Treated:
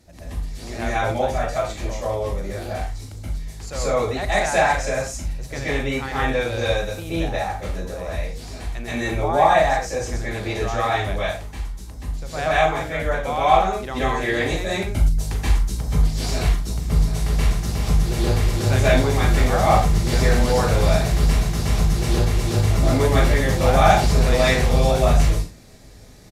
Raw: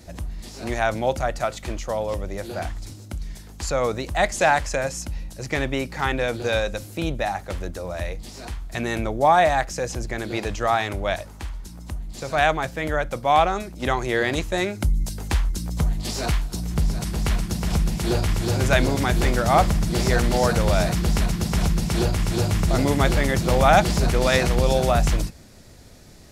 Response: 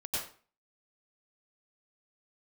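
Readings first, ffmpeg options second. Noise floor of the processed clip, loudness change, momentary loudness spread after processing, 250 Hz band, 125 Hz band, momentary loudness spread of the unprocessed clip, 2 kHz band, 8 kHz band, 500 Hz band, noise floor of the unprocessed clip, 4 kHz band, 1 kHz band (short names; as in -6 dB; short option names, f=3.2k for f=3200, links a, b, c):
-37 dBFS, +2.0 dB, 13 LU, 0.0 dB, +3.5 dB, 14 LU, +1.0 dB, +0.5 dB, +2.0 dB, -42 dBFS, +1.0 dB, +1.5 dB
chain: -filter_complex "[0:a]asplit=2[a][b];[b]adelay=38,volume=-13dB[c];[a][c]amix=inputs=2:normalize=0[d];[1:a]atrim=start_sample=2205,afade=t=out:st=0.23:d=0.01,atrim=end_sample=10584,asetrate=31752,aresample=44100[e];[d][e]afir=irnorm=-1:irlink=0,volume=-5.5dB"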